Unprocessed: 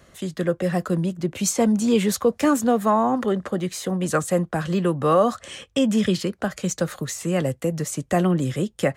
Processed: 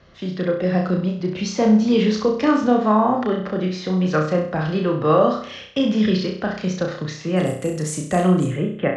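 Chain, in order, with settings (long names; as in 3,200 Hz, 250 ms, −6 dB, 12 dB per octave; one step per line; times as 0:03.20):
Butterworth low-pass 5,500 Hz 48 dB per octave, from 0:07.36 11,000 Hz, from 0:08.45 3,000 Hz
flutter between parallel walls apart 5.6 metres, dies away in 0.52 s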